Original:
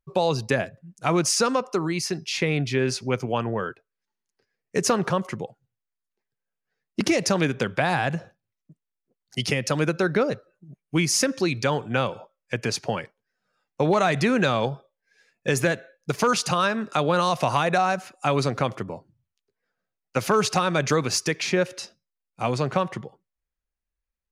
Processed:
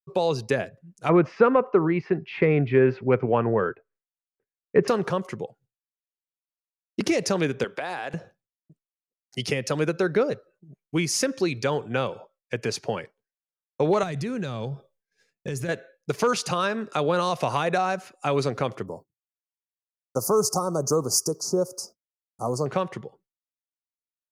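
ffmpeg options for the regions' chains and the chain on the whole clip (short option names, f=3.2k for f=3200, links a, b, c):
-filter_complex "[0:a]asettb=1/sr,asplit=3[a][b][c];[a]atrim=end=1.094[d];[b]atrim=start=1.09:end=4.88,asetpts=PTS-STARTPTS,afade=t=in:d=0.004:c=qsin,afade=t=out:st=3.786:d=0.004:c=qsin,lowpass=f=2.2k:w=0.5412,lowpass=f=2.2k:w=1.3066,acontrast=38[e];[c]atrim=start=4.876[f];[d][e]acrossfade=d=0.004:c1=hsin:c2=qsin[g];[g][f]acrossfade=d=0.004:c1=qsin:c2=hsin,asettb=1/sr,asplit=3[h][i][j];[h]atrim=end=7.644[k];[i]atrim=start=7.64:end=8.14,asetpts=PTS-STARTPTS,afade=t=in:d=0.004:c=qsin,afade=t=out:st=0.496:d=0.004:c=qsin,highpass=330,acompressor=threshold=-26dB:ratio=2.5:attack=3.2:release=140:knee=1:detection=peak[l];[j]atrim=start=8.136[m];[k][l]acrossfade=d=0.004:c1=hsin:c2=qsin[n];[n][m]acrossfade=d=0.004:c1=qsin:c2=hsin,asettb=1/sr,asplit=3[o][p][q];[o]atrim=end=14.034[r];[p]atrim=start=14.03:end=15.69,asetpts=PTS-STARTPTS,afade=t=in:d=0.004:c=qsin,afade=t=out:st=1.656:d=0.004:c=qsin,bass=f=250:g=12,treble=f=4k:g=6,acompressor=threshold=-28dB:ratio=3:attack=3.2:release=140:knee=1:detection=peak[s];[q]atrim=start=15.686[t];[r][s]acrossfade=d=0.004:c1=hsin:c2=qsin[u];[u][t]acrossfade=d=0.004:c1=qsin:c2=hsin,asettb=1/sr,asplit=3[v][w][x];[v]atrim=end=18.864[y];[w]atrim=start=18.86:end=22.66,asetpts=PTS-STARTPTS,afade=t=in:d=0.004:c=qsin,afade=t=out:st=3.796:d=0.004:c=qsin,aemphasis=mode=production:type=50fm,agate=range=-33dB:threshold=-47dB:ratio=3:release=100:detection=peak,asuperstop=centerf=2500:order=12:qfactor=0.68[z];[x]atrim=start=22.656[aa];[y][z]acrossfade=d=0.004:c1=hsin:c2=qsin[ab];[ab][aa]acrossfade=d=0.004:c1=qsin:c2=hsin,agate=range=-33dB:threshold=-54dB:ratio=3:detection=peak,equalizer=f=430:w=2.3:g=5.5,volume=-3.5dB"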